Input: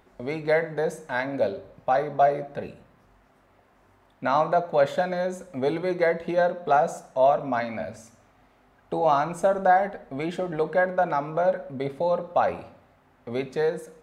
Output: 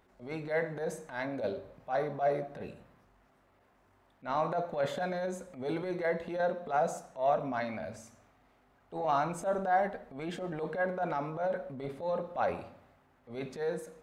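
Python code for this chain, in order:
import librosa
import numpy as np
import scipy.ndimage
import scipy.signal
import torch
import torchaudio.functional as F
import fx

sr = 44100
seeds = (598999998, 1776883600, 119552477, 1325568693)

y = fx.transient(x, sr, attack_db=-12, sustain_db=3)
y = y * 10.0 ** (-6.5 / 20.0)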